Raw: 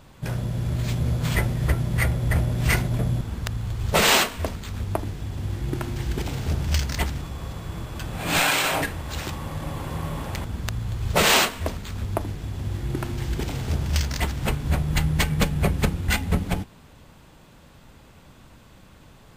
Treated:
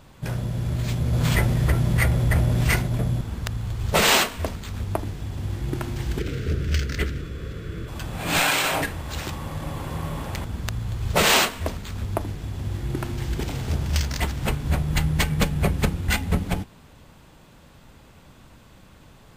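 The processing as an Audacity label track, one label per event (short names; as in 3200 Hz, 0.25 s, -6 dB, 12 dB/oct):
1.130000	2.640000	fast leveller amount 50%
6.190000	7.880000	EQ curve 240 Hz 0 dB, 450 Hz +7 dB, 860 Hz -21 dB, 1400 Hz +3 dB, 9100 Hz -8 dB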